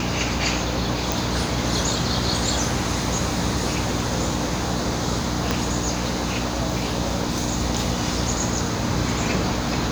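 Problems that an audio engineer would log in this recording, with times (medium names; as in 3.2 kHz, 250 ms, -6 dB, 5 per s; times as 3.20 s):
hum 60 Hz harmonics 5 -28 dBFS
1.12 s: pop
5.51 s: pop -6 dBFS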